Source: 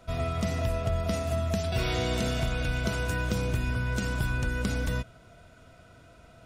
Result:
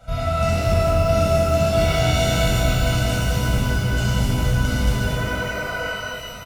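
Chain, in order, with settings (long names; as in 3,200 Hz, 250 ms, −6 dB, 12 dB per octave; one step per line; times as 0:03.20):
healed spectral selection 0:05.04–0:05.85, 370–2,600 Hz before
downward compressor 3 to 1, threshold −30 dBFS, peak gain reduction 6 dB
comb filter 1.4 ms, depth 97%
reverb with rising layers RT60 2.2 s, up +12 semitones, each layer −8 dB, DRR −9 dB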